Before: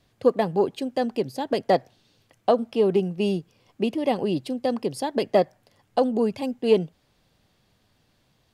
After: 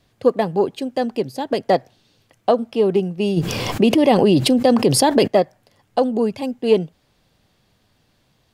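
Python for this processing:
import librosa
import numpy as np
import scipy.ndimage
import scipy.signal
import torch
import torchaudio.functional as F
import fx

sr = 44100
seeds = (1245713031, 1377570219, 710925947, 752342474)

y = fx.env_flatten(x, sr, amount_pct=70, at=(3.36, 5.26), fade=0.02)
y = F.gain(torch.from_numpy(y), 3.5).numpy()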